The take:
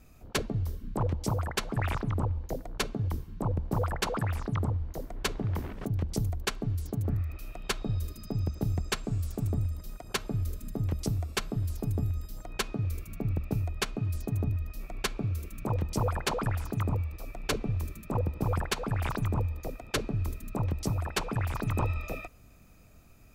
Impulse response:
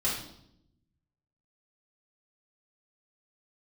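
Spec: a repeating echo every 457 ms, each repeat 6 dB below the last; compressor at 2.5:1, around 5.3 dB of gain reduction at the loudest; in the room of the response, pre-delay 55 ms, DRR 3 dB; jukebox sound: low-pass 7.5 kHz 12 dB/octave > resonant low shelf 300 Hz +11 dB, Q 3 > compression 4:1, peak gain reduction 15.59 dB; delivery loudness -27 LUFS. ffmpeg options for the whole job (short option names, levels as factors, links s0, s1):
-filter_complex "[0:a]acompressor=threshold=0.0224:ratio=2.5,aecho=1:1:457|914|1371|1828|2285|2742:0.501|0.251|0.125|0.0626|0.0313|0.0157,asplit=2[s0][s1];[1:a]atrim=start_sample=2205,adelay=55[s2];[s1][s2]afir=irnorm=-1:irlink=0,volume=0.282[s3];[s0][s3]amix=inputs=2:normalize=0,lowpass=7500,lowshelf=f=300:t=q:w=3:g=11,acompressor=threshold=0.0316:ratio=4,volume=2"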